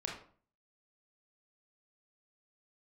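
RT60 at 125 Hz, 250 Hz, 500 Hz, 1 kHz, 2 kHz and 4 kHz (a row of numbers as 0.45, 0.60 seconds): 0.55, 0.55, 0.50, 0.45, 0.40, 0.30 seconds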